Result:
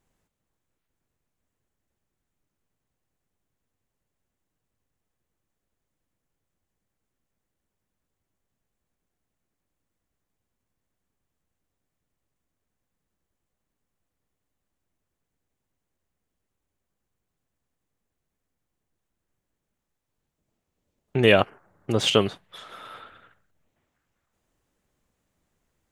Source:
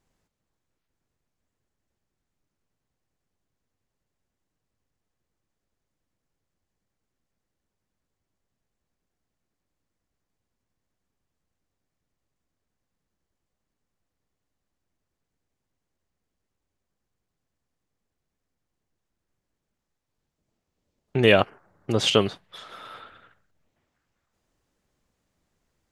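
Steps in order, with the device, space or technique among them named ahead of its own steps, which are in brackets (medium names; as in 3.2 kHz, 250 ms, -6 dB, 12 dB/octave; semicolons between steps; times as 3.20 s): exciter from parts (in parallel at -7 dB: high-pass 4.5 kHz 24 dB/octave + saturation -30 dBFS, distortion -11 dB)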